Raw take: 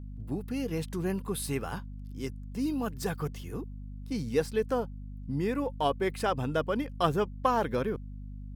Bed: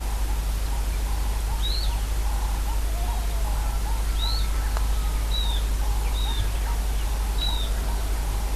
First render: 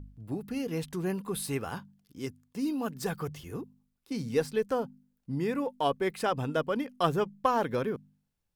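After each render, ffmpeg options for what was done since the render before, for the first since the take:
-af "bandreject=f=50:t=h:w=4,bandreject=f=100:t=h:w=4,bandreject=f=150:t=h:w=4,bandreject=f=200:t=h:w=4,bandreject=f=250:t=h:w=4"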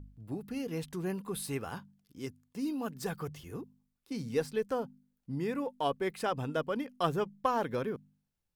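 -af "volume=-3.5dB"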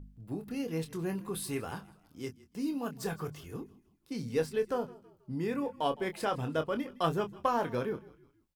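-filter_complex "[0:a]asplit=2[a][b];[b]adelay=25,volume=-8dB[c];[a][c]amix=inputs=2:normalize=0,asplit=4[d][e][f][g];[e]adelay=161,afreqshift=-36,volume=-20.5dB[h];[f]adelay=322,afreqshift=-72,volume=-28dB[i];[g]adelay=483,afreqshift=-108,volume=-35.6dB[j];[d][h][i][j]amix=inputs=4:normalize=0"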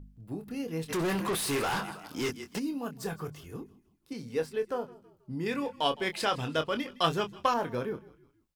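-filter_complex "[0:a]asplit=3[a][b][c];[a]afade=t=out:st=0.88:d=0.02[d];[b]asplit=2[e][f];[f]highpass=f=720:p=1,volume=30dB,asoftclip=type=tanh:threshold=-22.5dB[g];[e][g]amix=inputs=2:normalize=0,lowpass=f=5.8k:p=1,volume=-6dB,afade=t=in:st=0.88:d=0.02,afade=t=out:st=2.58:d=0.02[h];[c]afade=t=in:st=2.58:d=0.02[i];[d][h][i]amix=inputs=3:normalize=0,asettb=1/sr,asplit=3[j][k][l];[j]atrim=end=4.134[m];[k]atrim=start=4.13:end=4.92,asetpts=PTS-STARTPTS,afade=t=in:d=0.004:c=qsin,afade=t=out:st=0.786:d=0.004:c=qsin,bass=f=250:g=-6,treble=f=4k:g=-3[n];[l]atrim=start=4.916[o];[m][n]acrossfade=d=0.004:c1=hsin:c2=qsin[p];[p][o]acrossfade=d=0.004:c1=qsin:c2=hsin,asettb=1/sr,asplit=3[q][r][s];[q]atrim=end=5.464[t];[r]atrim=start=5.46:end=7.54,asetpts=PTS-STARTPTS,afade=t=in:d=0.004:c=qsin,afade=t=out:st=2.076:d=0.004:c=qsin,equalizer=f=3.9k:w=0.49:g=11.5[u];[s]atrim=start=7.536[v];[t][u]acrossfade=d=0.004:c1=hsin:c2=qsin[w];[w][v]acrossfade=d=0.004:c1=qsin:c2=hsin"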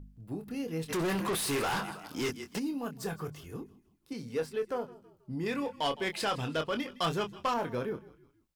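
-af "asoftclip=type=tanh:threshold=-23.5dB"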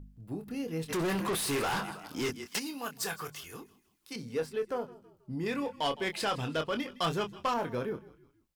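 -filter_complex "[0:a]asettb=1/sr,asplit=3[a][b][c];[a]atrim=end=2.464[d];[b]atrim=start=2.46:end=4.16,asetpts=PTS-STARTPTS,afade=t=in:d=0.004:c=qsin,afade=t=out:st=1.696:d=0.004:c=qsin,tiltshelf=f=680:g=-9.5[e];[c]atrim=start=4.156[f];[d][e]acrossfade=d=0.004:c1=hsin:c2=qsin[g];[g][f]acrossfade=d=0.004:c1=qsin:c2=hsin"

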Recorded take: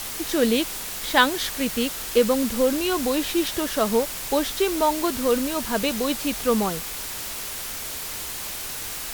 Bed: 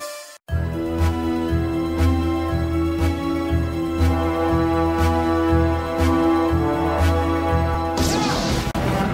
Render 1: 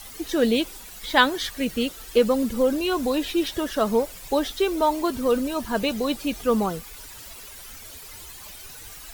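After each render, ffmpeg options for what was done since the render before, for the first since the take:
-af "afftdn=nr=13:nf=-33"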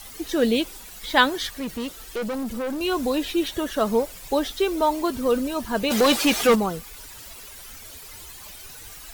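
-filter_complex "[0:a]asettb=1/sr,asplit=3[a][b][c];[a]atrim=end=1.474[d];[b]atrim=start=1.47:end=2.81,asetpts=PTS-STARTPTS,afade=t=in:d=0.004:c=qsin,afade=t=out:st=1.336:d=0.004:c=qsin,aeval=exprs='(tanh(17.8*val(0)+0.2)-tanh(0.2))/17.8':c=same[e];[c]atrim=start=2.806[f];[d][e]acrossfade=d=0.004:c1=hsin:c2=qsin[g];[g][f]acrossfade=d=0.004:c1=qsin:c2=hsin,asettb=1/sr,asplit=3[h][i][j];[h]atrim=end=3.364[k];[i]atrim=start=3.36:end=3.78,asetpts=PTS-STARTPTS,afade=t=in:d=0.004:c=qsin,afade=t=out:st=0.416:d=0.004:c=qsin,bandreject=f=5.1k:w=9.2[l];[j]atrim=start=3.776[m];[k][l]acrossfade=d=0.004:c1=hsin:c2=qsin[n];[n][m]acrossfade=d=0.004:c1=qsin:c2=hsin,asplit=3[o][p][q];[o]afade=t=out:st=5.9:d=0.02[r];[p]asplit=2[s][t];[t]highpass=f=720:p=1,volume=24dB,asoftclip=type=tanh:threshold=-8.5dB[u];[s][u]amix=inputs=2:normalize=0,lowpass=f=6.2k:p=1,volume=-6dB,afade=t=in:st=5.9:d=0.02,afade=t=out:st=6.54:d=0.02[v];[q]afade=t=in:st=6.54:d=0.02[w];[r][v][w]amix=inputs=3:normalize=0"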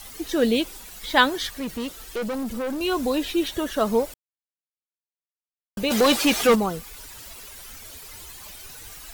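-filter_complex "[0:a]asplit=3[a][b][c];[a]atrim=end=4.14,asetpts=PTS-STARTPTS,afade=t=out:st=4.136:d=0.004:c=hsin[d];[b]atrim=start=4.14:end=5.77,asetpts=PTS-STARTPTS,volume=0[e];[c]atrim=start=5.77,asetpts=PTS-STARTPTS,afade=t=in:d=0.004:c=hsin[f];[d][e][f]concat=n=3:v=0:a=1"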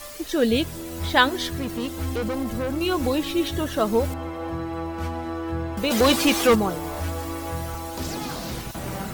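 -filter_complex "[1:a]volume=-11dB[a];[0:a][a]amix=inputs=2:normalize=0"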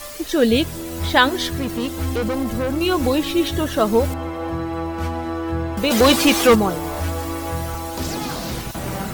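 -af "volume=4.5dB,alimiter=limit=-1dB:level=0:latency=1"

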